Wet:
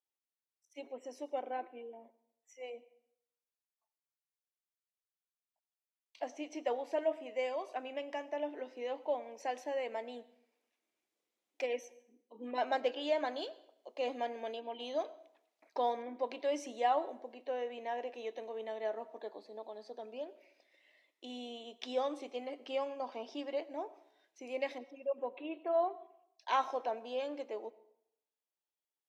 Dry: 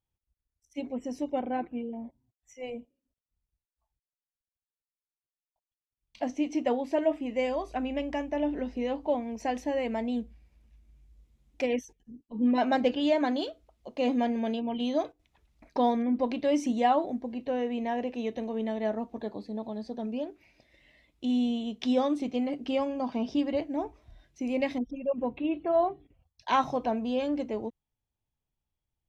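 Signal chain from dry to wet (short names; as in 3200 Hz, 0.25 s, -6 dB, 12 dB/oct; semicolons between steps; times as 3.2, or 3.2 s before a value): HPF 380 Hz 24 dB/oct; plate-style reverb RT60 0.75 s, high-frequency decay 0.8×, pre-delay 75 ms, DRR 18 dB; gain -6 dB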